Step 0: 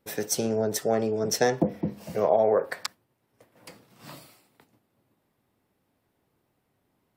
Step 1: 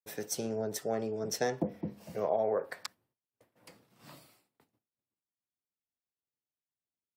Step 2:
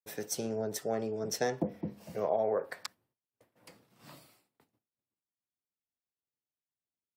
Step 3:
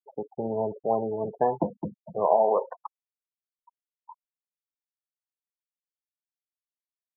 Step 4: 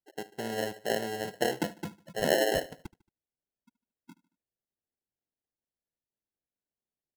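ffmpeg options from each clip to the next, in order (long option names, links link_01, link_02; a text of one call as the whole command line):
ffmpeg -i in.wav -af "agate=range=-33dB:threshold=-57dB:ratio=3:detection=peak,volume=-8.5dB" out.wav
ffmpeg -i in.wav -af anull out.wav
ffmpeg -i in.wav -af "lowpass=frequency=940:width_type=q:width=4.9,afftfilt=real='re*gte(hypot(re,im),0.0282)':imag='im*gte(hypot(re,im),0.0282)':win_size=1024:overlap=0.75,volume=3.5dB" out.wav
ffmpeg -i in.wav -af "acrusher=samples=37:mix=1:aa=0.000001,aecho=1:1:75|150|225:0.1|0.046|0.0212,volume=-5dB" out.wav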